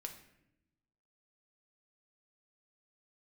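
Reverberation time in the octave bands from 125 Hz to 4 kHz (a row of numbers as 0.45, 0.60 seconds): 1.4, 1.3, 0.95, 0.70, 0.80, 0.60 seconds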